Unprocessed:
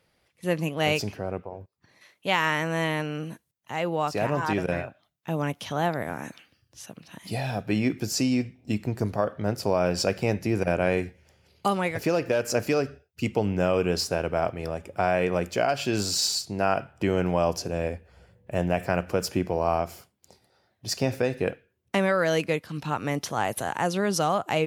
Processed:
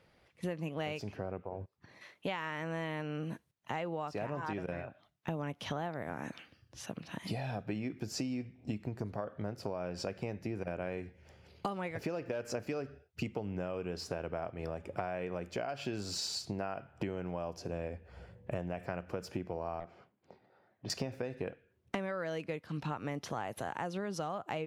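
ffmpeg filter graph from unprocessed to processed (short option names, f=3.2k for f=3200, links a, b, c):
-filter_complex "[0:a]asettb=1/sr,asplit=3[a][b][c];[a]atrim=end=19.804[d];[b]atrim=start=19.8:end=20.9,asetpts=PTS-STARTPTS,afade=t=in:d=0.004:c=qsin,afade=t=out:st=1.096:d=0.004:c=qsin,highpass=150,lowpass=2.3k,aeval=exprs='(tanh(14.1*val(0)+0.55)-tanh(0.55))/14.1':c=same[e];[c]atrim=start=20.896[f];[d][e]acrossfade=d=0.004:c1=hsin:c2=qsin[g];[g][f]acrossfade=d=0.004:c1=qsin:c2=hsin,lowpass=f=2.8k:p=1,acompressor=threshold=-37dB:ratio=12,volume=3dB"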